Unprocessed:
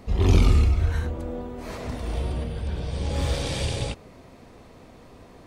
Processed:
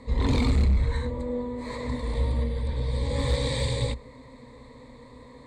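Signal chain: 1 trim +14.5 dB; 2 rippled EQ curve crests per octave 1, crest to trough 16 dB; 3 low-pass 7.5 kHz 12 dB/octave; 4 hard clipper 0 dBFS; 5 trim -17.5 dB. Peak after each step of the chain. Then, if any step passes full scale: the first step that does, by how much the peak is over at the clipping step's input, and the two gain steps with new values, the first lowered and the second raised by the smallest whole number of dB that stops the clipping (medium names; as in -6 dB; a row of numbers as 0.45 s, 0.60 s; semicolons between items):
+9.5 dBFS, +9.0 dBFS, +9.0 dBFS, 0.0 dBFS, -17.5 dBFS; step 1, 9.0 dB; step 1 +5.5 dB, step 5 -8.5 dB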